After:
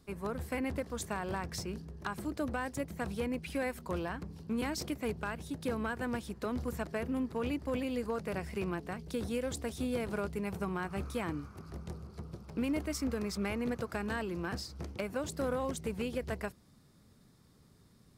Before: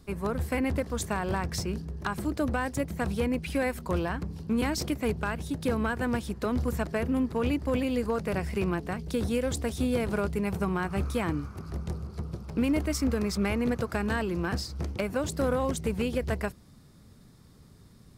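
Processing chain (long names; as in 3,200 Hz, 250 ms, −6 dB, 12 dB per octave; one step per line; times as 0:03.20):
low-shelf EQ 110 Hz −6.5 dB
level −6 dB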